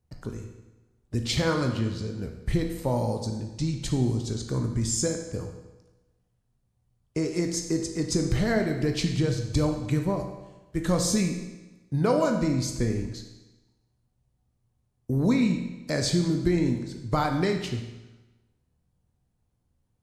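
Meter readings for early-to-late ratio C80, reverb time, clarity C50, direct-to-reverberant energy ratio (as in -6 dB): 8.5 dB, 1.1 s, 6.0 dB, 3.5 dB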